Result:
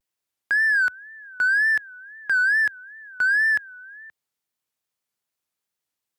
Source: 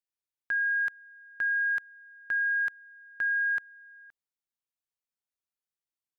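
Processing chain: high-pass 72 Hz 24 dB/octave; in parallel at -7.5 dB: hard clipper -34 dBFS, distortion -10 dB; on the sum: wow and flutter 150 cents; trim +6.5 dB

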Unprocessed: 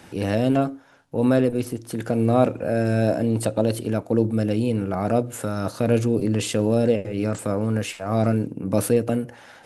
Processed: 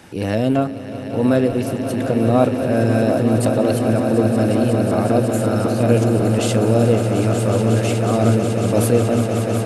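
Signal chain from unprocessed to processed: echo with a slow build-up 183 ms, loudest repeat 8, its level -11 dB; trim +2.5 dB

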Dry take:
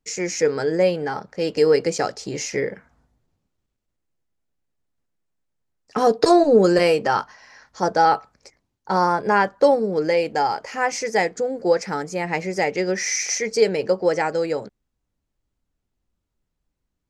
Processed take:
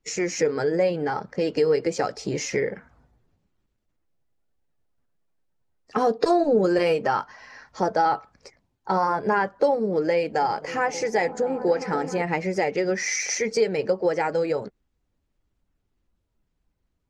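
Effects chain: coarse spectral quantiser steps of 15 dB; treble shelf 5.1 kHz -9.5 dB; compression 2:1, threshold -28 dBFS, peak gain reduction 10 dB; 10.15–12.22 s: delay with an opening low-pass 263 ms, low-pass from 200 Hz, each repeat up 1 oct, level -6 dB; trim +4 dB

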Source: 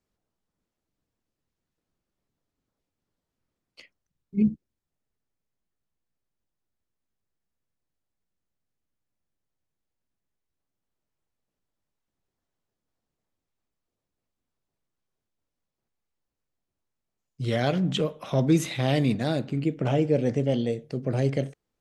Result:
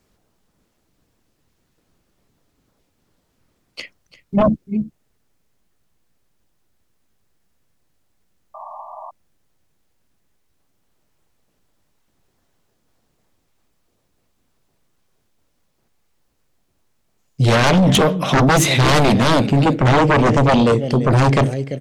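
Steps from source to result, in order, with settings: delay 342 ms -17 dB; sine folder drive 14 dB, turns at -9.5 dBFS; painted sound noise, 8.54–9.11 s, 590–1200 Hz -35 dBFS

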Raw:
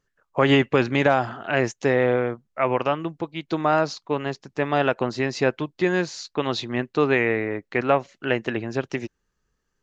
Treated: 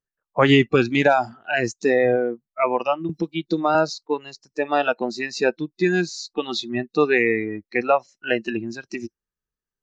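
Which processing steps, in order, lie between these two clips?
spectral noise reduction 20 dB; 3.09–3.75 s: three bands compressed up and down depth 70%; trim +3 dB

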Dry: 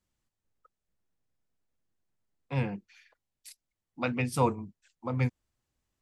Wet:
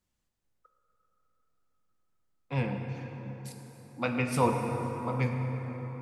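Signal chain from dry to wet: plate-style reverb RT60 4.8 s, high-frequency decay 0.5×, DRR 2.5 dB

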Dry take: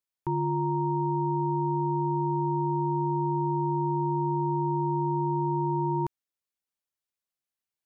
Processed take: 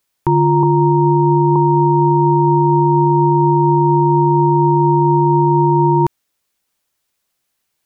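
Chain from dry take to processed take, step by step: 0.63–1.56 s: low-pass 1 kHz 24 dB/octave; loudness maximiser +23.5 dB; trim -4 dB

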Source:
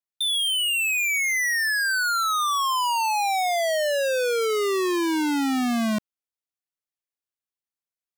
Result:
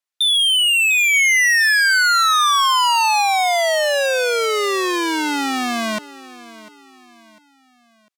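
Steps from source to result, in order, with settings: frequency weighting A; feedback delay 699 ms, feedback 40%, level -18.5 dB; 1.13–3.22 s: dynamic bell 3.8 kHz, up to +3 dB, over -36 dBFS, Q 1.1; trim +7 dB

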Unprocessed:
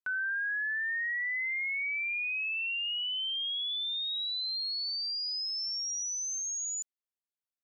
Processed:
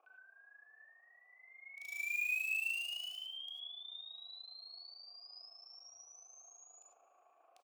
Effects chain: tone controls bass +1 dB, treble -5 dB; band noise 310–1300 Hz -58 dBFS; peak limiter -39.5 dBFS, peak gain reduction 11 dB; AM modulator 27 Hz, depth 70%; vowel filter a; in parallel at -8 dB: companded quantiser 4-bit; on the sum: resonant high shelf 1.8 kHz +13 dB, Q 1.5; on a send: feedback delay 186 ms, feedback 51%, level -23.5 dB; on the sum: gated-style reverb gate 120 ms rising, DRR 2 dB

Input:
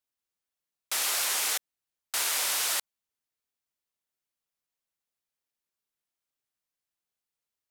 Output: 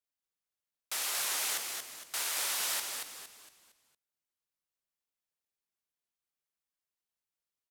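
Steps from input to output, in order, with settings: frequency-shifting echo 230 ms, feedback 38%, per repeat -86 Hz, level -5 dB; 2.39–2.79 s: modulation noise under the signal 23 dB; trim -6 dB

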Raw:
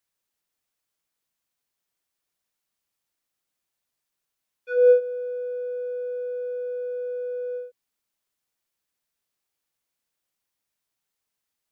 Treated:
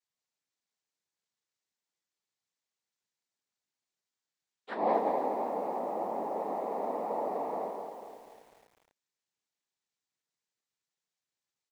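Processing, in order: dynamic bell 500 Hz, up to -6 dB, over -31 dBFS; feedback delay 170 ms, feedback 46%, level -6 dB; noise-vocoded speech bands 6; 5.79–6.39 s: distance through air 180 m; bit-crushed delay 248 ms, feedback 55%, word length 8-bit, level -10 dB; trim -7 dB

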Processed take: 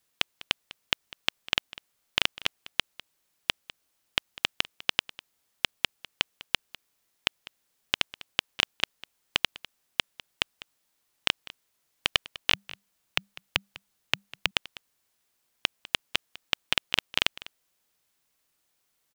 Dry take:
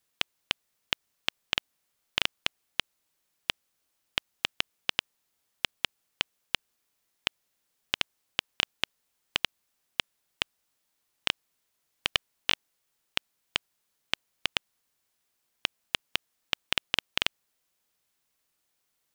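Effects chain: on a send: delay 200 ms -19 dB; 12.52–14.51 s: on the sum: frequency shift -200 Hz; trim +2.5 dB

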